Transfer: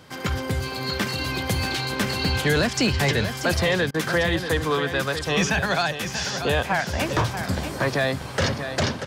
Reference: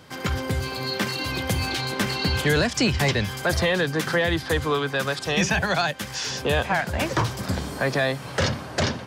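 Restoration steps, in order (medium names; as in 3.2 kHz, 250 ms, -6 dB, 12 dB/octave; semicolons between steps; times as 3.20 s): clip repair -13 dBFS; interpolate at 3.91 s, 31 ms; inverse comb 636 ms -9 dB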